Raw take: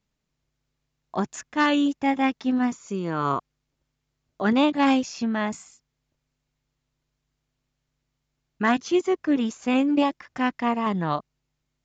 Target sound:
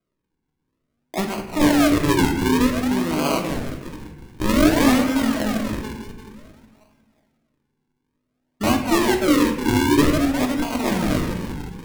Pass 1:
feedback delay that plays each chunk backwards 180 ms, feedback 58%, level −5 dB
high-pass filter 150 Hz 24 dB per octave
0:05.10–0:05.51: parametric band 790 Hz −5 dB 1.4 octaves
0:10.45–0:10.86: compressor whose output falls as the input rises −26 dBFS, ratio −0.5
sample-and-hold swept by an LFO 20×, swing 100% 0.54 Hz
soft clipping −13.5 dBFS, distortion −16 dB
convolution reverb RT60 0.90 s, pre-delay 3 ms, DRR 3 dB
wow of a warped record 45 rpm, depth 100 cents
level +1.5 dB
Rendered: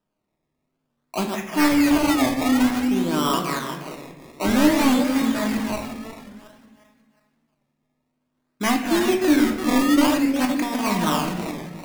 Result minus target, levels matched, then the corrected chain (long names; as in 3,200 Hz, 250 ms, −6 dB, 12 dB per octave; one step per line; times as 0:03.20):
soft clipping: distortion +11 dB; sample-and-hold swept by an LFO: distortion −9 dB
feedback delay that plays each chunk backwards 180 ms, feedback 58%, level −5 dB
high-pass filter 150 Hz 24 dB per octave
0:05.10–0:05.51: parametric band 790 Hz −5 dB 1.4 octaves
0:10.45–0:10.86: compressor whose output falls as the input rises −26 dBFS, ratio −0.5
sample-and-hold swept by an LFO 48×, swing 100% 0.54 Hz
soft clipping −6.5 dBFS, distortion −27 dB
convolution reverb RT60 0.90 s, pre-delay 3 ms, DRR 3 dB
wow of a warped record 45 rpm, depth 100 cents
level +1.5 dB